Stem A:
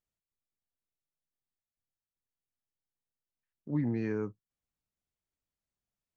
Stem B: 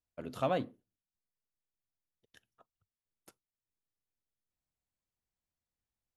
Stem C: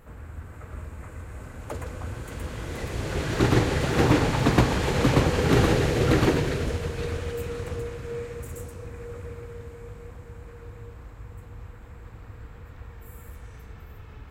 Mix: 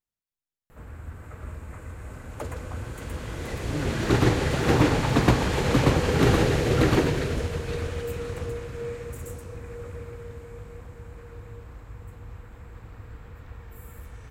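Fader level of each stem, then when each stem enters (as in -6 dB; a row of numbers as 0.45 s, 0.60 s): -2.5 dB, mute, 0.0 dB; 0.00 s, mute, 0.70 s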